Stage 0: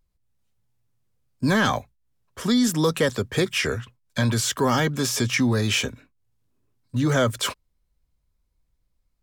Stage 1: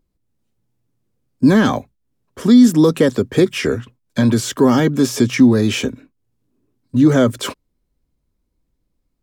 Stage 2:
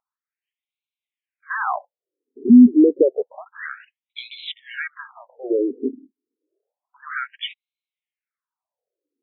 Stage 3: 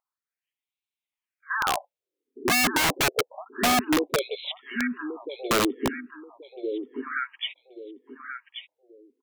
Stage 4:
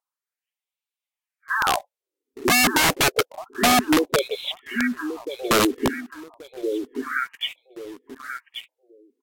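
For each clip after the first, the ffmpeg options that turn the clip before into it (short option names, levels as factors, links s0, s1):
-af "equalizer=f=290:w=0.8:g=13"
-af "afftfilt=real='re*between(b*sr/1024,300*pow(3000/300,0.5+0.5*sin(2*PI*0.29*pts/sr))/1.41,300*pow(3000/300,0.5+0.5*sin(2*PI*0.29*pts/sr))*1.41)':imag='im*between(b*sr/1024,300*pow(3000/300,0.5+0.5*sin(2*PI*0.29*pts/sr))/1.41,300*pow(3000/300,0.5+0.5*sin(2*PI*0.29*pts/sr))*1.41)':win_size=1024:overlap=0.75"
-af "aecho=1:1:1131|2262|3393:0.398|0.107|0.029,aeval=exprs='(mod(5.31*val(0)+1,2)-1)/5.31':c=same,volume=0.794"
-filter_complex "[0:a]asplit=2[s0][s1];[s1]acrusher=bits=6:mix=0:aa=0.000001,volume=0.668[s2];[s0][s2]amix=inputs=2:normalize=0" -ar 44100 -c:a libvorbis -b:a 64k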